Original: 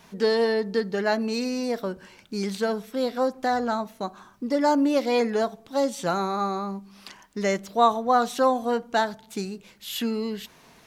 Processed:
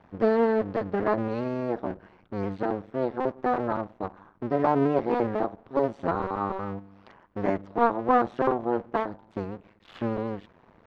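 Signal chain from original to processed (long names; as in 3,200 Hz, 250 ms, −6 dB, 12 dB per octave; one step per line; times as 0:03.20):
sub-harmonics by changed cycles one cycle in 2, muted
low-pass filter 1,300 Hz 12 dB per octave
level +1.5 dB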